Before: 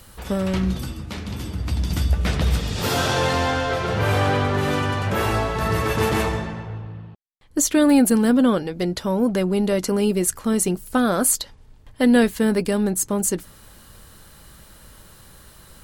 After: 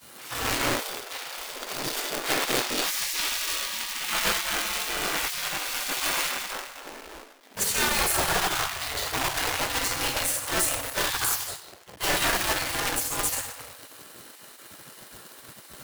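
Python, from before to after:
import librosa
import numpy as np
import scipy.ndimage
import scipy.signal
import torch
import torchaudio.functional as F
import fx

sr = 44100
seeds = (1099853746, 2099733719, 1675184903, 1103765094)

y = fx.room_shoebox(x, sr, seeds[0], volume_m3=310.0, walls='mixed', distance_m=3.2)
y = fx.quant_companded(y, sr, bits=4)
y = fx.spec_gate(y, sr, threshold_db=-20, keep='weak')
y = y * 10.0 ** (-7.0 / 20.0)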